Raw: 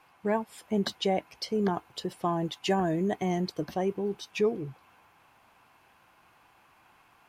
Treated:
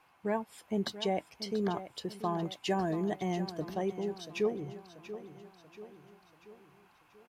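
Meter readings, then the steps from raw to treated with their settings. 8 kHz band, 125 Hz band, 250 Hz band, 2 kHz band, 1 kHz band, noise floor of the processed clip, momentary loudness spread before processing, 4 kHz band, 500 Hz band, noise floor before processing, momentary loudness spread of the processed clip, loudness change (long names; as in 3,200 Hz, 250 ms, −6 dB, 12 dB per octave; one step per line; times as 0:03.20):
−4.0 dB, −4.5 dB, −4.5 dB, −4.0 dB, −4.5 dB, −65 dBFS, 6 LU, −4.0 dB, −4.0 dB, −62 dBFS, 18 LU, −4.5 dB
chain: repeating echo 685 ms, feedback 51%, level −13 dB
level −4.5 dB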